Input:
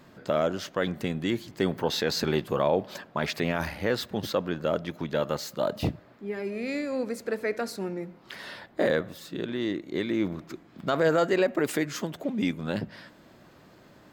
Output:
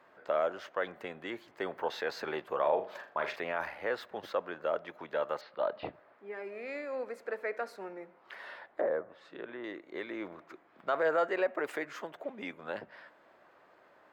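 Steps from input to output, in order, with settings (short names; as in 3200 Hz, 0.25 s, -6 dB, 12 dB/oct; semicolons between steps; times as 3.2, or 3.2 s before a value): 5.41–5.94 steep low-pass 4600 Hz 48 dB/oct; 8.61–9.64 treble ducked by the level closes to 1000 Hz, closed at -24.5 dBFS; three-band isolator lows -23 dB, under 450 Hz, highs -17 dB, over 2400 Hz; 2.59–3.36 flutter echo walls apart 7 m, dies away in 0.31 s; gain -2 dB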